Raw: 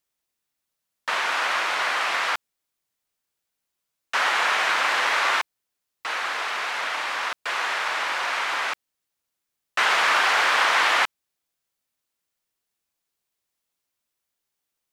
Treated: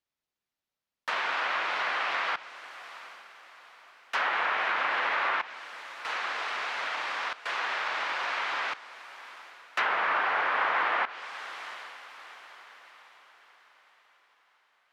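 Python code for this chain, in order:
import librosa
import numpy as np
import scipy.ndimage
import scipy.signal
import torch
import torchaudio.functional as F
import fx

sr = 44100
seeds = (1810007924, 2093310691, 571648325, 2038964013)

y = scipy.signal.medfilt(x, 5)
y = fx.echo_diffused(y, sr, ms=772, feedback_pct=43, wet_db=-16)
y = fx.env_lowpass_down(y, sr, base_hz=1900.0, full_db=-17.0)
y = F.gain(torch.from_numpy(y), -5.0).numpy()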